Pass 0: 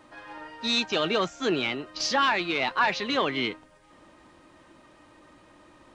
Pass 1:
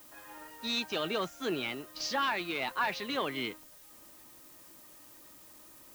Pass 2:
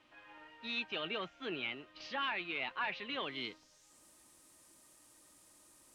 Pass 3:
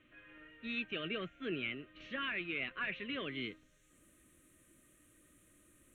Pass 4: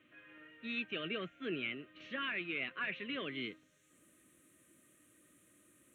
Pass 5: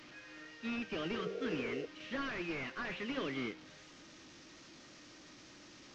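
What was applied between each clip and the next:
added noise blue -48 dBFS; trim -7.5 dB
low-pass sweep 2.8 kHz -> 9.2 kHz, 3.12–4.05 s; trim -8.5 dB
tilt EQ -1.5 dB/octave; static phaser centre 2.1 kHz, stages 4; trim +2.5 dB
high-pass 130 Hz 12 dB/octave
one-bit delta coder 32 kbps, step -53.5 dBFS; de-hum 95.36 Hz, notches 34; spectral replace 1.17–1.83 s, 340–760 Hz before; trim +4.5 dB

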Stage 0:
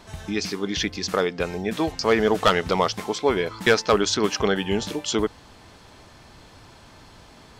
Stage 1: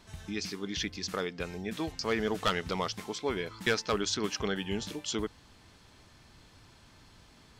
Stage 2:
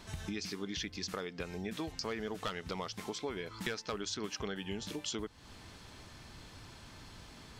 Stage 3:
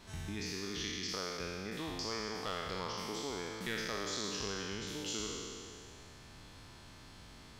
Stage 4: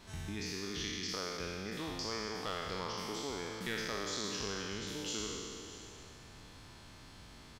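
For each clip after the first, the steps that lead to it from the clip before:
peaking EQ 660 Hz -6 dB 1.9 oct; trim -7.5 dB
compression 5:1, threshold -42 dBFS, peak gain reduction 16.5 dB; trim +5 dB
spectral sustain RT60 2.47 s; trim -5.5 dB
delay 631 ms -15.5 dB

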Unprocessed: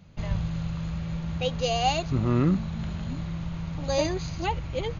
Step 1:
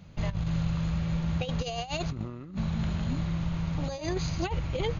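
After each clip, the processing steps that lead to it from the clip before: compressor with a negative ratio -29 dBFS, ratio -0.5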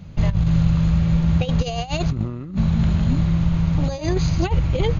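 bass shelf 290 Hz +7.5 dB; trim +5.5 dB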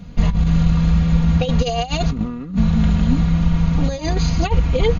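comb 4.2 ms, depth 73%; trim +2 dB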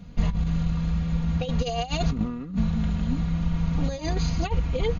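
gain riding 0.5 s; trim -8.5 dB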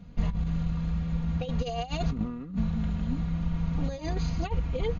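treble shelf 3.6 kHz -6 dB; trim -4 dB

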